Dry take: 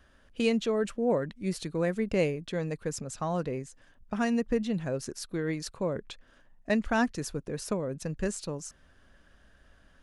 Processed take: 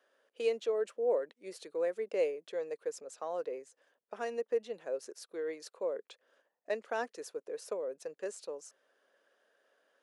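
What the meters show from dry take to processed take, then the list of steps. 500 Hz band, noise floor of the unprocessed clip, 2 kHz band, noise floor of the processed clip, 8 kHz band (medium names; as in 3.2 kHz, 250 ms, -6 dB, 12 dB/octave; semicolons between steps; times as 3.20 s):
-2.5 dB, -61 dBFS, -9.5 dB, -84 dBFS, -10.0 dB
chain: ladder high-pass 410 Hz, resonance 55%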